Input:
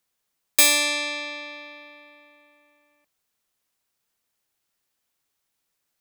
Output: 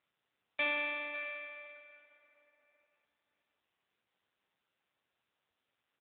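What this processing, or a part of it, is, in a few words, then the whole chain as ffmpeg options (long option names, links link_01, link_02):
satellite phone: -af "highpass=320,lowpass=3100,aecho=1:1:550:0.2,volume=-9dB" -ar 8000 -c:a libopencore_amrnb -b:a 6700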